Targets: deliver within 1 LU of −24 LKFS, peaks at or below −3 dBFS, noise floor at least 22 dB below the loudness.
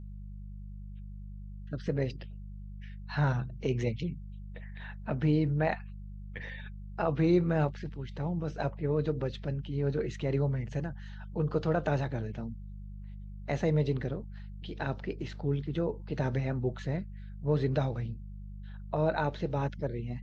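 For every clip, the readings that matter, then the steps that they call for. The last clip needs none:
mains hum 50 Hz; hum harmonics up to 200 Hz; level of the hum −41 dBFS; integrated loudness −32.5 LKFS; sample peak −14.5 dBFS; target loudness −24.0 LKFS
→ hum removal 50 Hz, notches 4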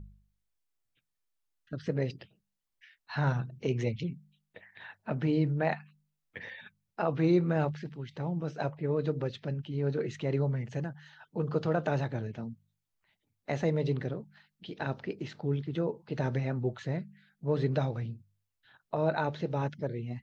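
mains hum none found; integrated loudness −32.5 LKFS; sample peak −14.5 dBFS; target loudness −24.0 LKFS
→ level +8.5 dB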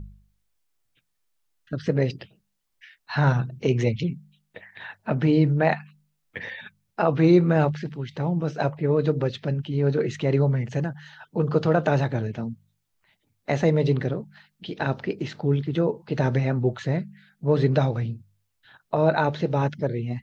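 integrated loudness −24.0 LKFS; sample peak −6.0 dBFS; background noise floor −75 dBFS

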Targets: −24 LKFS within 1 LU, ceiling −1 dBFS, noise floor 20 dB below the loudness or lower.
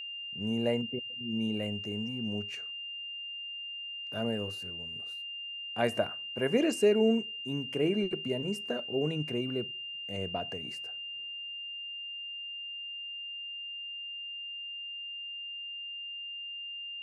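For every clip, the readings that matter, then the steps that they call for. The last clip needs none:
interfering tone 2,800 Hz; level of the tone −38 dBFS; integrated loudness −34.0 LKFS; sample peak −14.0 dBFS; target loudness −24.0 LKFS
→ notch filter 2,800 Hz, Q 30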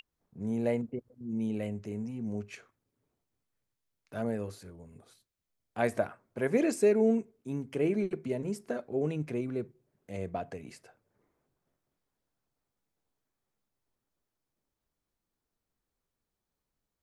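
interfering tone none found; integrated loudness −32.5 LKFS; sample peak −14.0 dBFS; target loudness −24.0 LKFS
→ level +8.5 dB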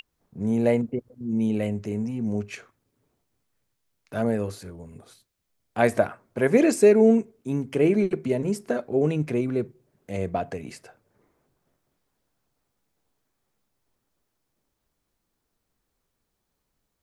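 integrated loudness −24.0 LKFS; sample peak −5.5 dBFS; background noise floor −78 dBFS

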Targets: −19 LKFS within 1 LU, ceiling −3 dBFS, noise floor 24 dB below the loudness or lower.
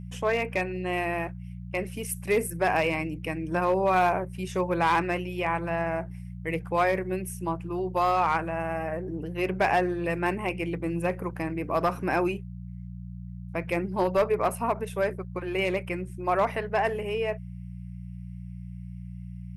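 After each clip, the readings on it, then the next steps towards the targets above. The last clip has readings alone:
share of clipped samples 0.5%; peaks flattened at −16.5 dBFS; mains hum 60 Hz; hum harmonics up to 180 Hz; level of the hum −36 dBFS; integrated loudness −28.0 LKFS; sample peak −16.5 dBFS; target loudness −19.0 LKFS
→ clipped peaks rebuilt −16.5 dBFS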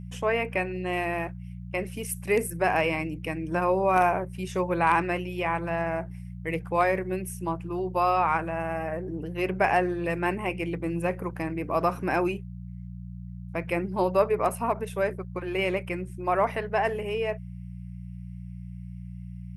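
share of clipped samples 0.0%; mains hum 60 Hz; hum harmonics up to 180 Hz; level of the hum −36 dBFS
→ hum removal 60 Hz, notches 3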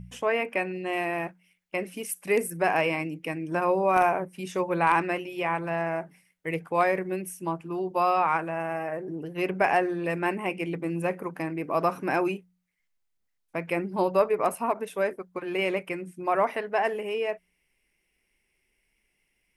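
mains hum none found; integrated loudness −28.0 LKFS; sample peak −9.0 dBFS; target loudness −19.0 LKFS
→ level +9 dB
brickwall limiter −3 dBFS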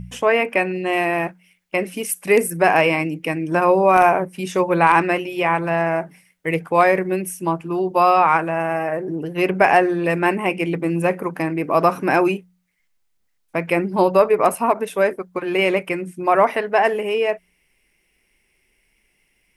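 integrated loudness −19.0 LKFS; sample peak −3.0 dBFS; background noise floor −66 dBFS

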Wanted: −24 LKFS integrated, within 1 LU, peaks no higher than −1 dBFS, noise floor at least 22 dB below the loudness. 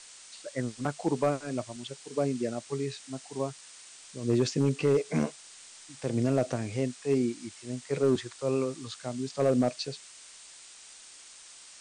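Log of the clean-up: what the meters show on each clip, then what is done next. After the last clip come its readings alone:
share of clipped samples 0.4%; peaks flattened at −17.5 dBFS; background noise floor −51 dBFS; target noise floor −53 dBFS; integrated loudness −30.5 LKFS; sample peak −17.5 dBFS; target loudness −24.0 LKFS
→ clipped peaks rebuilt −17.5 dBFS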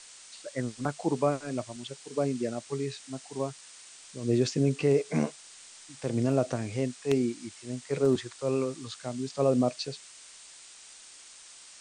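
share of clipped samples 0.0%; background noise floor −51 dBFS; target noise floor −53 dBFS
→ broadband denoise 6 dB, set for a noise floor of −51 dBFS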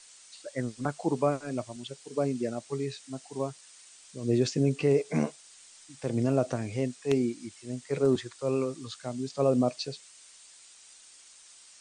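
background noise floor −54 dBFS; integrated loudness −30.5 LKFS; sample peak −8.5 dBFS; target loudness −24.0 LKFS
→ level +6.5 dB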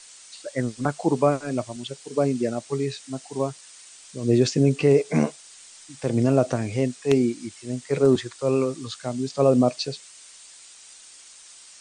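integrated loudness −24.0 LKFS; sample peak −2.0 dBFS; background noise floor −48 dBFS

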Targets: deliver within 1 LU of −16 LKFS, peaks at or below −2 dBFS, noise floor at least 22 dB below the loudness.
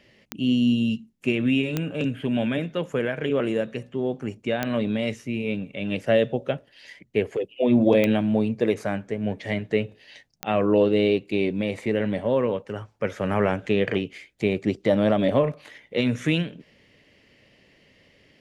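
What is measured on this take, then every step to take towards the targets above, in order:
number of clicks 5; integrated loudness −24.5 LKFS; sample peak −7.0 dBFS; target loudness −16.0 LKFS
→ click removal
level +8.5 dB
brickwall limiter −2 dBFS

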